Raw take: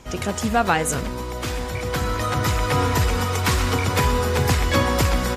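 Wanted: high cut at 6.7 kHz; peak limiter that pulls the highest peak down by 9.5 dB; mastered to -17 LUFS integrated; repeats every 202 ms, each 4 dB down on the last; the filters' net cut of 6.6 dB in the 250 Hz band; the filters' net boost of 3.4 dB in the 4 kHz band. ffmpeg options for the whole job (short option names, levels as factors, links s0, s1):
-af "lowpass=6700,equalizer=f=250:t=o:g=-9,equalizer=f=4000:t=o:g=5,alimiter=limit=0.178:level=0:latency=1,aecho=1:1:202|404|606|808|1010|1212|1414|1616|1818:0.631|0.398|0.25|0.158|0.0994|0.0626|0.0394|0.0249|0.0157,volume=2.11"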